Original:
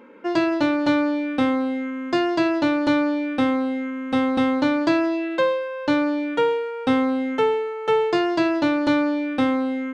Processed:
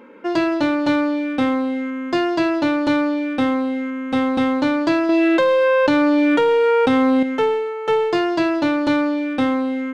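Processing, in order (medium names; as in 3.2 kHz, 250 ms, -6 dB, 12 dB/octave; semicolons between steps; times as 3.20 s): in parallel at -7.5 dB: overload inside the chain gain 24 dB; 5.09–7.23 s: on the sum: level flattener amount 100%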